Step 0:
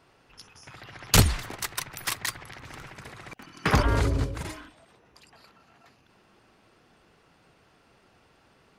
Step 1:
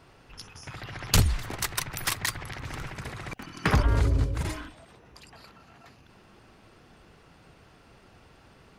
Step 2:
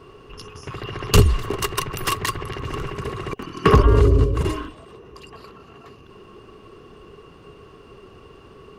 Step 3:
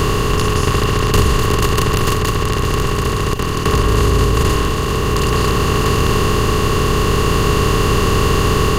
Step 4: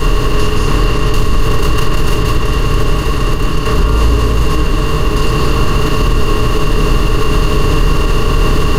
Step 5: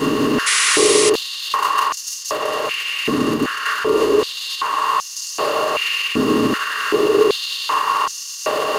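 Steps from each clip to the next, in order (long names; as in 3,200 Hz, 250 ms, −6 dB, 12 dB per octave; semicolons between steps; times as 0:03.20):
low-shelf EQ 130 Hz +9 dB; downward compressor 2 to 1, threshold −30 dBFS, peak gain reduction 12.5 dB; level +4 dB
low-shelf EQ 320 Hz +7 dB; hollow resonant body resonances 410/1,100/2,800 Hz, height 16 dB, ringing for 35 ms; level +1 dB
compressor on every frequency bin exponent 0.2; automatic gain control; level −1 dB
convolution reverb RT60 0.30 s, pre-delay 4 ms, DRR −7 dB; boost into a limiter −8.5 dB; level −1 dB
sound drawn into the spectrogram noise, 0:00.46–0:01.10, 1,800–11,000 Hz −15 dBFS; high-pass on a step sequencer 2.6 Hz 250–5,900 Hz; level −3.5 dB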